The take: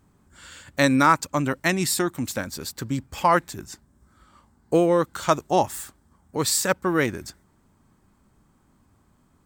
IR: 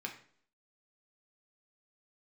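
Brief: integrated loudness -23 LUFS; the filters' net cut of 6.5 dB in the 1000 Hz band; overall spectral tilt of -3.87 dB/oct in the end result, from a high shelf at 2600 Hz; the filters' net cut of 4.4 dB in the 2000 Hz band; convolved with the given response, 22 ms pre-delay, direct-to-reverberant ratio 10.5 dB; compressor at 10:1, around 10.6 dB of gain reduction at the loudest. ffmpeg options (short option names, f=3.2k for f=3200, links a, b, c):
-filter_complex "[0:a]equalizer=f=1k:t=o:g=-8,equalizer=f=2k:t=o:g=-4.5,highshelf=f=2.6k:g=4.5,acompressor=threshold=-27dB:ratio=10,asplit=2[a][b];[1:a]atrim=start_sample=2205,adelay=22[c];[b][c]afir=irnorm=-1:irlink=0,volume=-11dB[d];[a][d]amix=inputs=2:normalize=0,volume=9.5dB"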